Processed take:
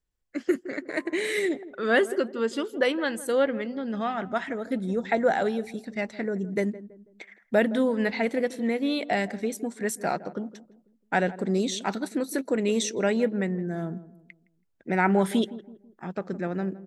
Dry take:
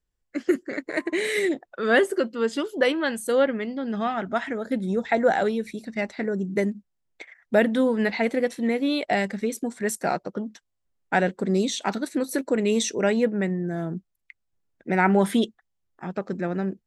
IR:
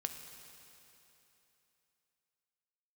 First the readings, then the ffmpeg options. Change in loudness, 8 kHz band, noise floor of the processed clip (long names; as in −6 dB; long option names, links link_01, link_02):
−2.5 dB, −2.5 dB, −69 dBFS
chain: -filter_complex "[0:a]asplit=2[link_01][link_02];[link_02]adelay=164,lowpass=frequency=870:poles=1,volume=-15dB,asplit=2[link_03][link_04];[link_04]adelay=164,lowpass=frequency=870:poles=1,volume=0.41,asplit=2[link_05][link_06];[link_06]adelay=164,lowpass=frequency=870:poles=1,volume=0.41,asplit=2[link_07][link_08];[link_08]adelay=164,lowpass=frequency=870:poles=1,volume=0.41[link_09];[link_01][link_03][link_05][link_07][link_09]amix=inputs=5:normalize=0,volume=-2.5dB"